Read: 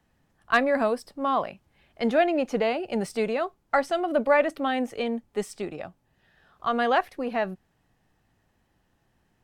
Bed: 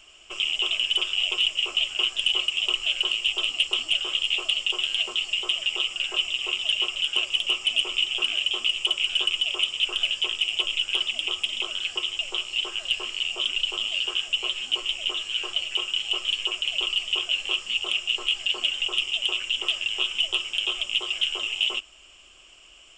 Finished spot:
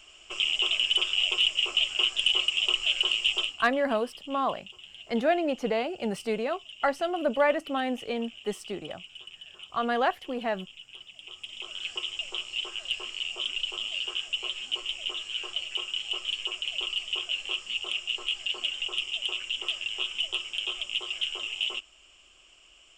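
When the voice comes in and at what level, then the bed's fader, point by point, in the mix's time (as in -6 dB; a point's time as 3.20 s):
3.10 s, -3.0 dB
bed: 3.40 s -1 dB
3.67 s -21.5 dB
11.07 s -21.5 dB
11.88 s -5.5 dB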